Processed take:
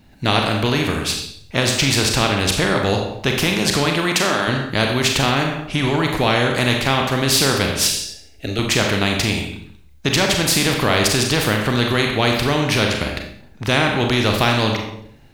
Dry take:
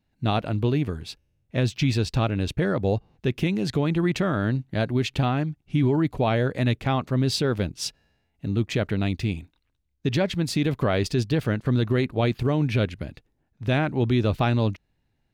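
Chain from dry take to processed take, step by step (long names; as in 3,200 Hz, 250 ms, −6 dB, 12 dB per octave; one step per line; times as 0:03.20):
0:03.85–0:04.47: high-pass filter 150 Hz → 460 Hz 12 dB per octave
0:07.87–0:08.59: phaser with its sweep stopped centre 420 Hz, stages 4
four-comb reverb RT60 0.54 s, combs from 29 ms, DRR 3.5 dB
every bin compressed towards the loudest bin 2 to 1
level +8 dB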